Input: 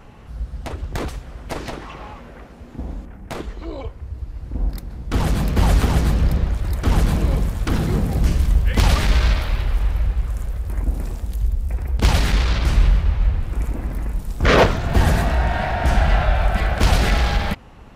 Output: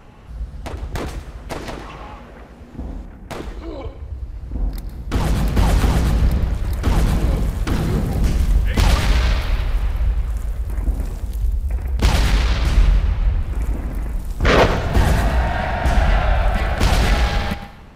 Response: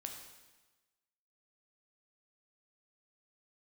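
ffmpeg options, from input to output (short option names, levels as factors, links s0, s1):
-filter_complex "[0:a]asplit=2[s0][s1];[1:a]atrim=start_sample=2205,asetrate=52920,aresample=44100,adelay=112[s2];[s1][s2]afir=irnorm=-1:irlink=0,volume=0.473[s3];[s0][s3]amix=inputs=2:normalize=0"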